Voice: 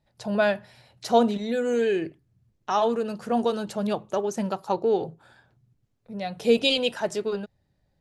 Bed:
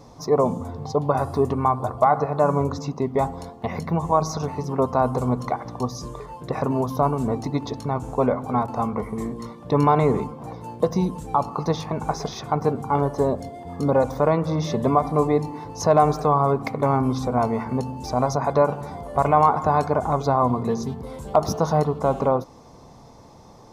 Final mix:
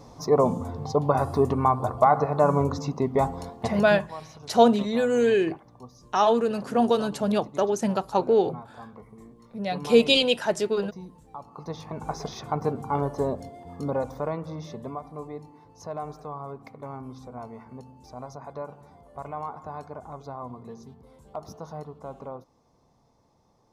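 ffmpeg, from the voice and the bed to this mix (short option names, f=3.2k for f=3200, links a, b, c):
-filter_complex "[0:a]adelay=3450,volume=2.5dB[a];[1:a]volume=13.5dB,afade=t=out:st=3.64:d=0.45:silence=0.11885,afade=t=in:st=11.45:d=0.83:silence=0.188365,afade=t=out:st=13.14:d=1.89:silence=0.223872[b];[a][b]amix=inputs=2:normalize=0"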